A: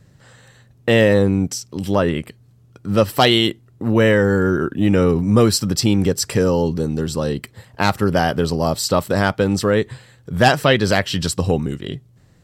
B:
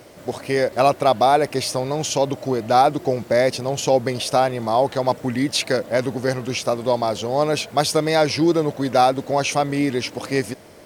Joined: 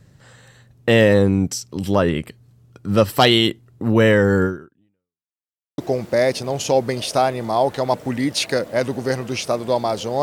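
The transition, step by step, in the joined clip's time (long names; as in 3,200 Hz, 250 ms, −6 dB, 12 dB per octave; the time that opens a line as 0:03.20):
A
0:04.44–0:05.31: fade out exponential
0:05.31–0:05.78: silence
0:05.78: continue with B from 0:02.96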